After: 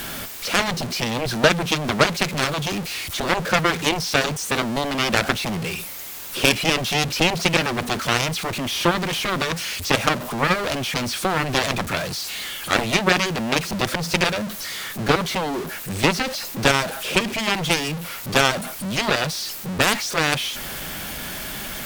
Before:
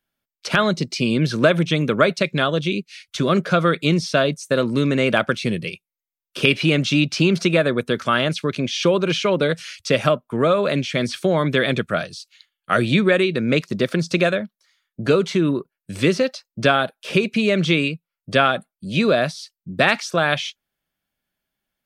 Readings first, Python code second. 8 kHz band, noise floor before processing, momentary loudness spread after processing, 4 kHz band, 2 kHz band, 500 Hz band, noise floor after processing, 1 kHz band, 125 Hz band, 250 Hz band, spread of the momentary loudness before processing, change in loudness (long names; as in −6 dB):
+9.0 dB, below −85 dBFS, 9 LU, +2.5 dB, +0.5 dB, −5.5 dB, −33 dBFS, +1.5 dB, −4.0 dB, −5.0 dB, 8 LU, −2.0 dB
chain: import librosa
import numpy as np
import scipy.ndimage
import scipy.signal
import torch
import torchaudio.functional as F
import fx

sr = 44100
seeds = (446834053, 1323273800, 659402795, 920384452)

y = x + 0.5 * 10.0 ** (-22.5 / 20.0) * np.sign(x)
y = fx.cheby_harmonics(y, sr, harmonics=(7,), levels_db=(-11,), full_scale_db=-1.0)
y = y * 10.0 ** (-1.5 / 20.0)